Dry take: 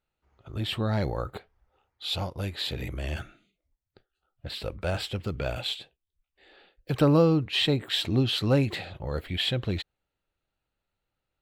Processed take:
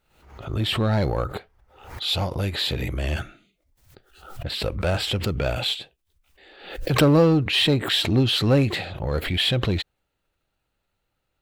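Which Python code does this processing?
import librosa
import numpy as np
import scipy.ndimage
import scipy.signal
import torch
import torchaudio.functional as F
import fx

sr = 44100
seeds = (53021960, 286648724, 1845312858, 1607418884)

p1 = np.clip(10.0 ** (27.0 / 20.0) * x, -1.0, 1.0) / 10.0 ** (27.0 / 20.0)
p2 = x + (p1 * 10.0 ** (-3.0 / 20.0))
p3 = fx.pre_swell(p2, sr, db_per_s=86.0)
y = p3 * 10.0 ** (2.0 / 20.0)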